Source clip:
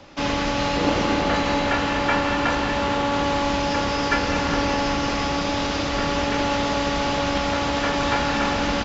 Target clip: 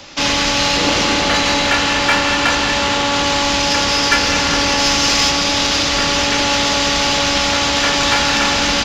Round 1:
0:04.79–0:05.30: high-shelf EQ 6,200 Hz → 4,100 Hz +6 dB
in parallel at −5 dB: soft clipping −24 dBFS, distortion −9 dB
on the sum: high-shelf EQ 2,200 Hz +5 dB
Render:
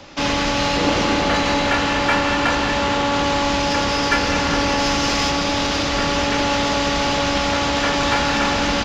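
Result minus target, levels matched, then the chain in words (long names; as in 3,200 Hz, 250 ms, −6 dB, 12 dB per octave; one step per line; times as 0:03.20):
4,000 Hz band −3.0 dB
0:04.79–0:05.30: high-shelf EQ 6,200 Hz → 4,100 Hz +6 dB
in parallel at −5 dB: soft clipping −24 dBFS, distortion −9 dB
on the sum: high-shelf EQ 2,200 Hz +15.5 dB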